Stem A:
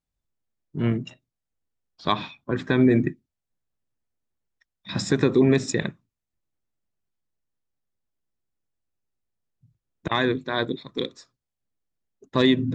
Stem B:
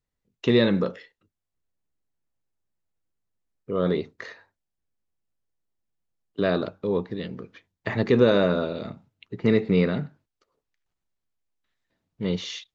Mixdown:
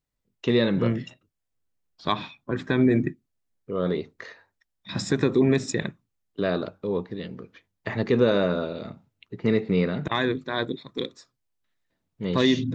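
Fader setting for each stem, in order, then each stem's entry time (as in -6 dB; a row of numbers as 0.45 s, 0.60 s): -2.0 dB, -2.0 dB; 0.00 s, 0.00 s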